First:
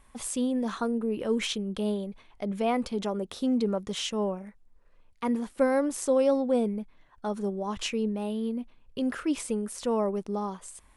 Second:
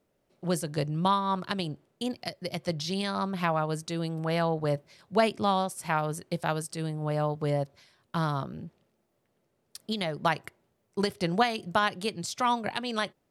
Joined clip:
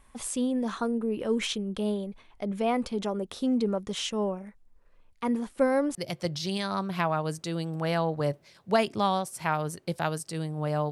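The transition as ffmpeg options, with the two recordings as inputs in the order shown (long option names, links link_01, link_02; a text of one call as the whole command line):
ffmpeg -i cue0.wav -i cue1.wav -filter_complex "[0:a]apad=whole_dur=10.91,atrim=end=10.91,atrim=end=5.952[link_01];[1:a]atrim=start=2.388:end=7.35[link_02];[link_01][link_02]acrossfade=duration=0.004:curve1=hsin:curve2=hsin" out.wav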